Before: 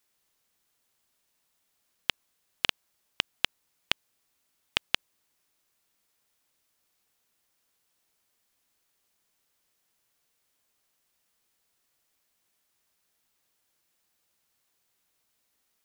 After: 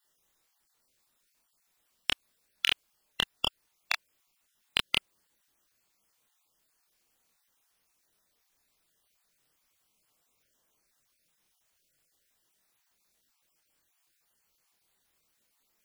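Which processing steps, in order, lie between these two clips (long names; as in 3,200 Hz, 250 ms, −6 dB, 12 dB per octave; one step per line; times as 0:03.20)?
time-frequency cells dropped at random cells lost 29%
gain into a clipping stage and back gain 7 dB
multi-voice chorus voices 6, 0.8 Hz, delay 27 ms, depth 3.4 ms
level +5.5 dB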